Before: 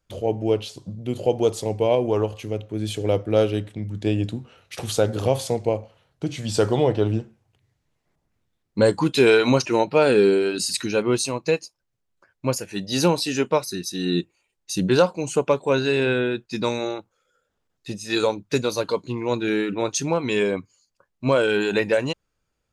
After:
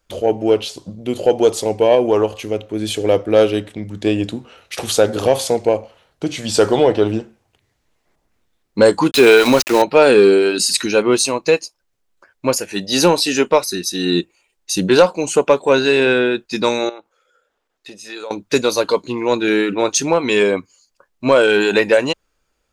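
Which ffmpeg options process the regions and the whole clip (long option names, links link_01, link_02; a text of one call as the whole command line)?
ffmpeg -i in.wav -filter_complex "[0:a]asettb=1/sr,asplit=3[link_01][link_02][link_03];[link_01]atrim=end=9.114[link_04];[link_02]atrim=start=9.11:end=9.82,asetpts=PTS-STARTPTS,afade=type=in:duration=0.004:curve=qsin,afade=type=out:start_time=0.706:duration=0.004:curve=qsin,highpass=frequency=52:width=0.5412,highpass=frequency=52:width=1.3066,aeval=exprs='val(0)*gte(abs(val(0)),0.0447)':channel_layout=same[link_05];[link_03]atrim=start=9.816[link_06];[link_04][link_05]acrossfade=duration=0.004:curve1=hsin:curve2=qsin[link_07];[link_07][link_06]acrossfade=duration=0.004:curve1=qsin:curve2=hsin,asettb=1/sr,asplit=3[link_08][link_09][link_10];[link_08]atrim=end=16.894[link_11];[link_09]atrim=start=16.89:end=18.31,asetpts=PTS-STARTPTS,afade=type=in:duration=0.004:curve=qsin,afade=type=out:start_time=1.416:duration=0.004:curve=qsin,bass=frequency=250:gain=-12,treble=frequency=4000:gain=-6,acompressor=threshold=-43dB:ratio=2.5:attack=3.2:release=140:knee=1:detection=peak[link_12];[link_10]atrim=start=18.306[link_13];[link_11][link_12]acrossfade=duration=0.004:curve1=hsin:curve2=qsin[link_14];[link_14][link_13]acrossfade=duration=0.004:curve1=qsin:curve2=hsin,equalizer=frequency=120:width=1.1:gain=-12,acontrast=71,volume=2dB" out.wav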